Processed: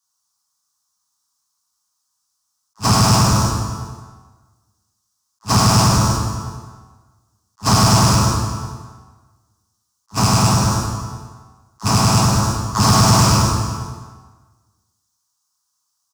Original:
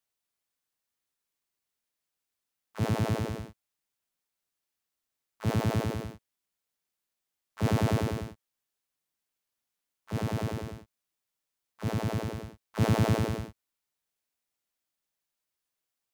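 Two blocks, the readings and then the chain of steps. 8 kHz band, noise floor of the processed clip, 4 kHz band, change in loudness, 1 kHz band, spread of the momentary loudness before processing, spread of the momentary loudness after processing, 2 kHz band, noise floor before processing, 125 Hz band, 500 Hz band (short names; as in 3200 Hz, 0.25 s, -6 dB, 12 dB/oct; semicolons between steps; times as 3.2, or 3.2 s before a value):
+28.5 dB, -72 dBFS, +24.0 dB, +15.0 dB, +21.0 dB, 16 LU, 16 LU, +14.5 dB, under -85 dBFS, +15.0 dB, +9.5 dB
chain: rattling part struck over -27 dBFS, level -21 dBFS; HPF 51 Hz 6 dB/oct; in parallel at -4.5 dB: fuzz box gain 36 dB, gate -44 dBFS; on the sum: EQ curve 110 Hz 0 dB, 310 Hz -7 dB, 530 Hz -15 dB, 1100 Hz +12 dB, 2200 Hz -16 dB, 5700 Hz +15 dB, 14000 Hz +1 dB; on a send: echo 0.372 s -18.5 dB; on the sum: plate-style reverb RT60 1.4 s, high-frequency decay 0.75×, pre-delay 0 ms, DRR -5 dB; soft clip -7 dBFS, distortion -20 dB; attack slew limiter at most 470 dB/s; gain +2.5 dB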